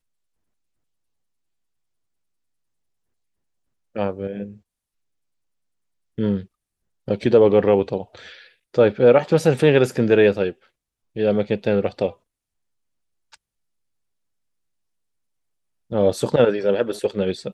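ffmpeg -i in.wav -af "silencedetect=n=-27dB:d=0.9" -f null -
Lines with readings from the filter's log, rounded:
silence_start: 0.00
silence_end: 3.97 | silence_duration: 3.97
silence_start: 4.46
silence_end: 6.19 | silence_duration: 1.73
silence_start: 12.10
silence_end: 15.92 | silence_duration: 3.82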